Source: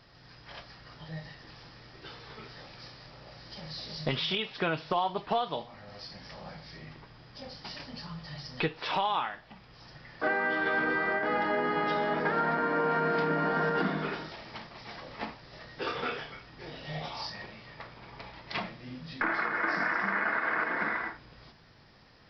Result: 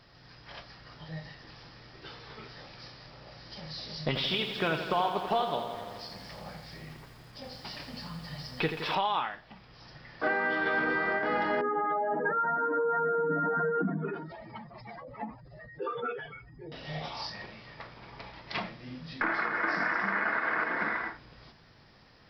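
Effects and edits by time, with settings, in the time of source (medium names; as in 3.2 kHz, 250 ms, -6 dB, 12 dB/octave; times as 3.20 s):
4.07–8.95 s: bit-crushed delay 84 ms, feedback 80%, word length 9-bit, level -9 dB
11.61–16.72 s: spectral contrast enhancement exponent 2.7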